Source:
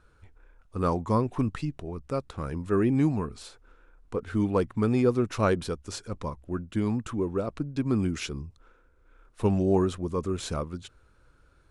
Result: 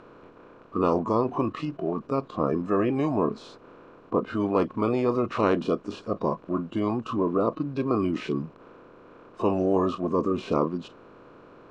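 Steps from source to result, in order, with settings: spectral levelling over time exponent 0.2; spectral noise reduction 21 dB; low-pass 2.6 kHz 12 dB/octave; peaking EQ 67 Hz -8 dB 2.6 oct; trim -3.5 dB

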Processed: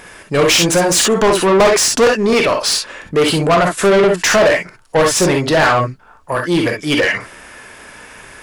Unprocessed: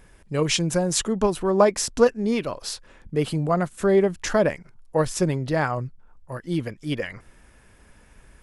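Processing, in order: gated-style reverb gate 80 ms rising, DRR 3.5 dB; overdrive pedal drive 27 dB, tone 6.5 kHz, clips at -3.5 dBFS

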